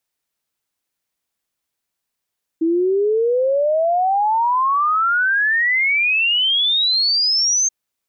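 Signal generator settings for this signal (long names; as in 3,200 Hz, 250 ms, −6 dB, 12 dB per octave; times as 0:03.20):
exponential sine sweep 320 Hz → 6,400 Hz 5.08 s −14 dBFS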